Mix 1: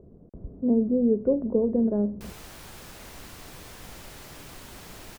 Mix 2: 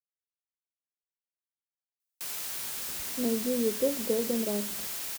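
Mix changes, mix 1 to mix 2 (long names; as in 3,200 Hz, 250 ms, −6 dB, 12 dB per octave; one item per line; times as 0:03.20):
speech: entry +2.55 s
master: add spectral tilt +4 dB per octave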